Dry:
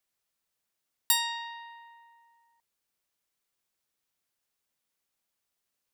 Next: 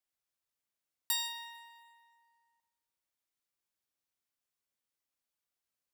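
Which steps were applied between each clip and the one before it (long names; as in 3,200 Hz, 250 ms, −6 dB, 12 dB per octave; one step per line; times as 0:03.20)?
coupled-rooms reverb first 0.64 s, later 1.8 s, from −17 dB, DRR 4.5 dB
level −9 dB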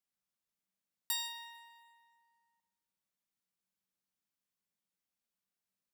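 parametric band 190 Hz +14.5 dB 0.46 octaves
level −3 dB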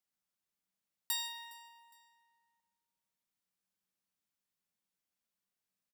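repeating echo 411 ms, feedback 36%, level −23 dB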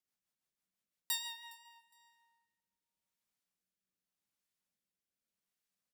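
rotating-speaker cabinet horn 6 Hz, later 0.85 Hz, at 0:01.24
level +1 dB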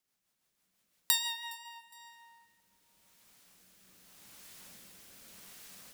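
camcorder AGC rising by 8.6 dB per second
level +7 dB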